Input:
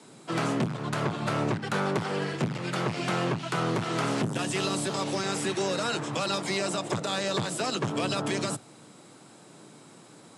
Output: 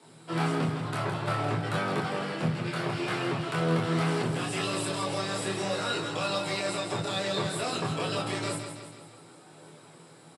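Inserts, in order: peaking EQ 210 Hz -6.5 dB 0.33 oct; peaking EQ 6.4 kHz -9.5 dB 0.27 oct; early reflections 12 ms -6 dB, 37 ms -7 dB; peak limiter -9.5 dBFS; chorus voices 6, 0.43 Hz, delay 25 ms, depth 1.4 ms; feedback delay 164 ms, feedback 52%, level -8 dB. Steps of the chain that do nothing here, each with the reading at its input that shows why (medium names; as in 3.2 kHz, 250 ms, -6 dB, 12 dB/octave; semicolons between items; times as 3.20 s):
peak limiter -9.5 dBFS: peak at its input -14.0 dBFS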